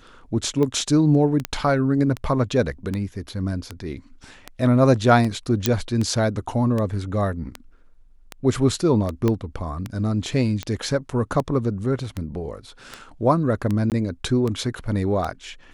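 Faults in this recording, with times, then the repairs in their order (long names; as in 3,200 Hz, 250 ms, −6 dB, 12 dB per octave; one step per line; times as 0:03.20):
scratch tick 78 rpm −14 dBFS
0:01.45: click −8 dBFS
0:05.66: click −2 dBFS
0:09.28: click −10 dBFS
0:13.90–0:13.92: drop-out 18 ms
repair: click removal
repair the gap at 0:13.90, 18 ms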